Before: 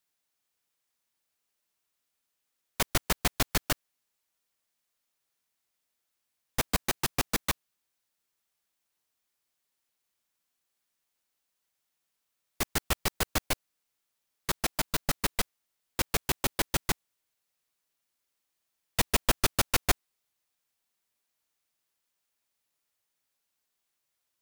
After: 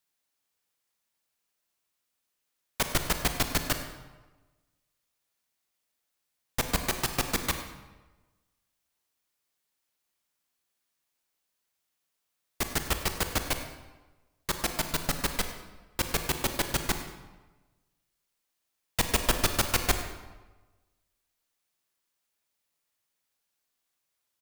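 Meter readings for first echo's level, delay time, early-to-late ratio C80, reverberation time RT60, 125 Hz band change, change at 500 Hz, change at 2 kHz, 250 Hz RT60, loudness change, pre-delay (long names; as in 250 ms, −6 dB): −15.5 dB, 99 ms, 9.0 dB, 1.2 s, +1.0 dB, +1.0 dB, +1.0 dB, 1.2 s, +1.0 dB, 27 ms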